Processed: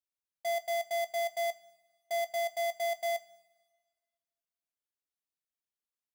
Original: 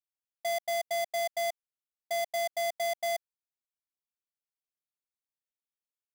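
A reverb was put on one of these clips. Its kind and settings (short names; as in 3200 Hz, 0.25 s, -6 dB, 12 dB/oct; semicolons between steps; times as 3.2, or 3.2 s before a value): two-slope reverb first 0.21 s, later 1.6 s, from -18 dB, DRR 11.5 dB; gain -4 dB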